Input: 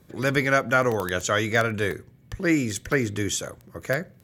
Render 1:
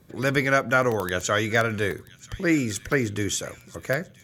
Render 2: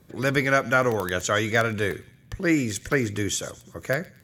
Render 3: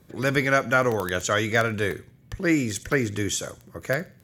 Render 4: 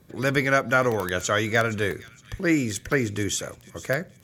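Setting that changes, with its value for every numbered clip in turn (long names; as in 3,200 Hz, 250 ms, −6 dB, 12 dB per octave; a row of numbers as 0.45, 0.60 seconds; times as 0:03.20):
delay with a high-pass on its return, delay time: 984, 114, 63, 466 milliseconds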